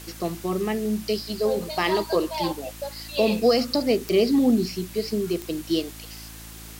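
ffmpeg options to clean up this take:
-af "adeclick=t=4,bandreject=f=55:t=h:w=4,bandreject=f=110:t=h:w=4,bandreject=f=165:t=h:w=4,bandreject=f=220:t=h:w=4,bandreject=f=275:t=h:w=4,bandreject=f=330:t=h:w=4,afftdn=nr=27:nf=-41"

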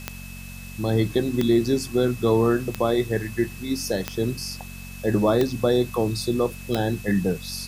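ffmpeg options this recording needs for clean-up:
-af "adeclick=t=4,bandreject=f=46:t=h:w=4,bandreject=f=92:t=h:w=4,bandreject=f=138:t=h:w=4,bandreject=f=184:t=h:w=4,bandreject=f=230:t=h:w=4,bandreject=f=2.6k:w=30,afwtdn=0.0056"

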